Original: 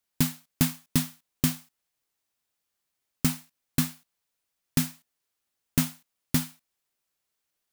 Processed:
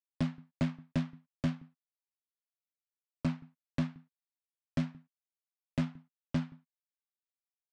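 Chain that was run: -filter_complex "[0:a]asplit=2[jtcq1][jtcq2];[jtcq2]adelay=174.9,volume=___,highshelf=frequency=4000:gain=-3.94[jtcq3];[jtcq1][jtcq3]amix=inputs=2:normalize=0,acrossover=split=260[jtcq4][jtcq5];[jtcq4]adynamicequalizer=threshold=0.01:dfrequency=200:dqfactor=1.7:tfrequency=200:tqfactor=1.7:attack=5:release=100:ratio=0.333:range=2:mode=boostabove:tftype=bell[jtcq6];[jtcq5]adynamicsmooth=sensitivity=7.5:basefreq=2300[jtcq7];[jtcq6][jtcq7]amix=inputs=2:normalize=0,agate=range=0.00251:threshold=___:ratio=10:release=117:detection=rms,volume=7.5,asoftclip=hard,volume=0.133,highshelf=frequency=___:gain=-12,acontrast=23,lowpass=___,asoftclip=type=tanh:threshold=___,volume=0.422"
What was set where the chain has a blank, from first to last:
0.0398, 0.00178, 3500, 5400, 0.178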